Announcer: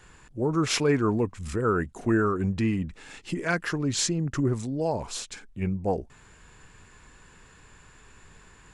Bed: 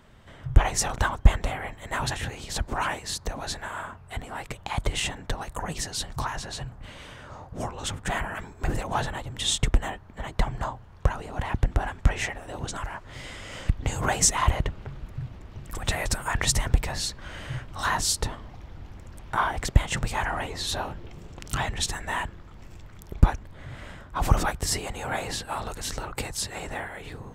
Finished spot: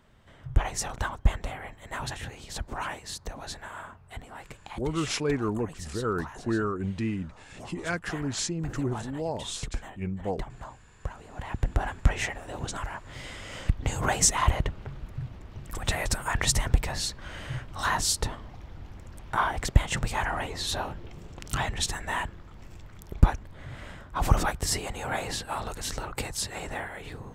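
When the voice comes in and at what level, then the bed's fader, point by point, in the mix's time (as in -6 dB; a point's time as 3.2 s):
4.40 s, -4.5 dB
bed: 4.06 s -6 dB
4.94 s -12 dB
11.16 s -12 dB
11.81 s -1 dB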